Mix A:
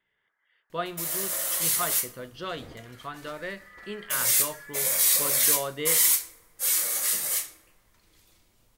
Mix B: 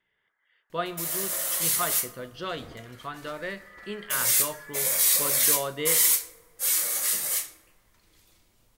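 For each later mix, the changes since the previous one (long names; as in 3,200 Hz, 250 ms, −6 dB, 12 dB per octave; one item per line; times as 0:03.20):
speech: send +9.0 dB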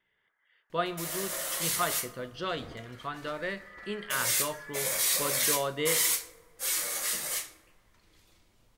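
second sound: add high-shelf EQ 8,500 Hz −10.5 dB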